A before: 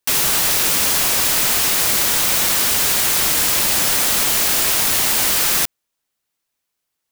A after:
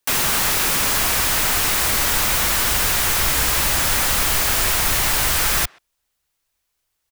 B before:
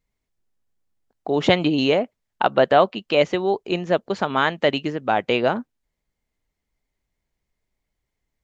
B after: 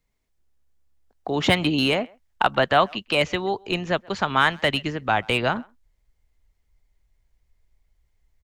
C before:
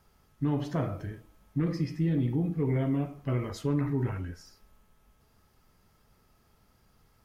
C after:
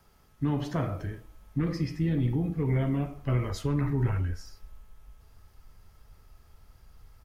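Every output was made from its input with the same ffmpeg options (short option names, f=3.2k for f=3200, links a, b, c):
-filter_complex "[0:a]asubboost=boost=5.5:cutoff=84,acrossover=split=320|770|2200[a][b][c][d];[a]tremolo=f=70:d=0.261[e];[b]acompressor=threshold=-39dB:ratio=6[f];[d]asoftclip=type=hard:threshold=-22dB[g];[e][f][c][g]amix=inputs=4:normalize=0,asplit=2[h][i];[i]adelay=130,highpass=300,lowpass=3.4k,asoftclip=type=hard:threshold=-15.5dB,volume=-26dB[j];[h][j]amix=inputs=2:normalize=0,volume=3dB"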